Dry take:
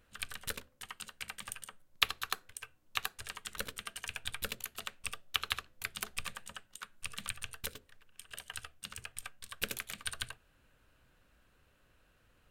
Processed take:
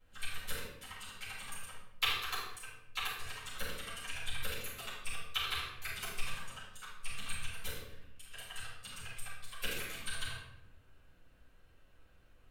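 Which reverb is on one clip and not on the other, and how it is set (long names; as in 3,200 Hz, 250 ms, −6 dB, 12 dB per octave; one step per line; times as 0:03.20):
rectangular room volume 260 cubic metres, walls mixed, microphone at 6.9 metres
level −16 dB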